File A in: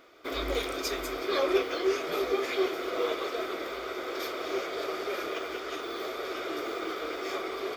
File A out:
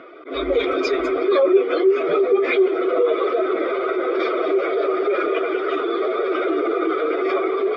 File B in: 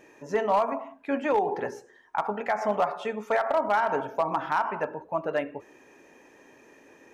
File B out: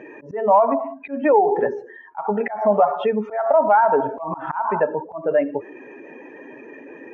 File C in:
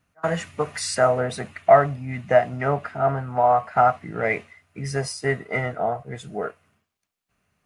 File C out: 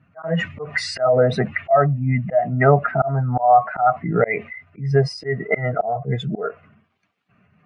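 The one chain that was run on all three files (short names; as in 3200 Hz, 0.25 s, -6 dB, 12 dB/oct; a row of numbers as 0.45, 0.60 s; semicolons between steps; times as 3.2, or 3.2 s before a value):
spectral contrast raised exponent 1.7; in parallel at +3 dB: compressor 6:1, threshold -33 dBFS; on the sum: Chebyshev band-pass 130–2700 Hz, order 2; auto swell 0.198 s; match loudness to -20 LUFS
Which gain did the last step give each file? +8.5, +7.5, +7.5 dB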